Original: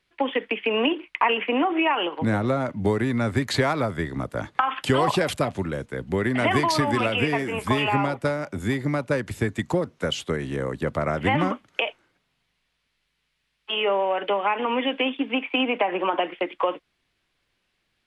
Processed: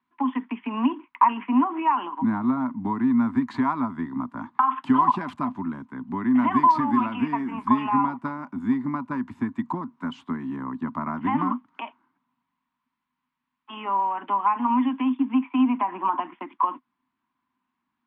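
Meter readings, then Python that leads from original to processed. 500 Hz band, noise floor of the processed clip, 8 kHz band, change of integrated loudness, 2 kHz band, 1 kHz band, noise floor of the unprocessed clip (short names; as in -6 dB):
-15.5 dB, -82 dBFS, under -25 dB, 0.0 dB, -11.0 dB, +3.0 dB, -74 dBFS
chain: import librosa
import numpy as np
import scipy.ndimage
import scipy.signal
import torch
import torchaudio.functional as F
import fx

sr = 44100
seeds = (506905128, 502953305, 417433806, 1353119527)

y = fx.double_bandpass(x, sr, hz=500.0, octaves=2.0)
y = y * librosa.db_to_amplitude(8.5)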